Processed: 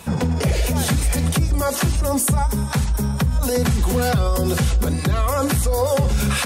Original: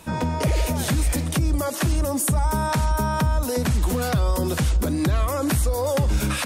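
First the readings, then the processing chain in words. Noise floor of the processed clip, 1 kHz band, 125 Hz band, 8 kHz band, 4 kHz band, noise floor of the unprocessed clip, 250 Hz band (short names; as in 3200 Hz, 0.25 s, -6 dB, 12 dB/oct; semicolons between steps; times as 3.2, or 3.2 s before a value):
-24 dBFS, +1.0 dB, +3.0 dB, +4.0 dB, +4.0 dB, -27 dBFS, +2.5 dB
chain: notches 60/120/180/240/300/360/420/480/540 Hz; limiter -18 dBFS, peak gain reduction 6.5 dB; notch comb 310 Hz; gain +8 dB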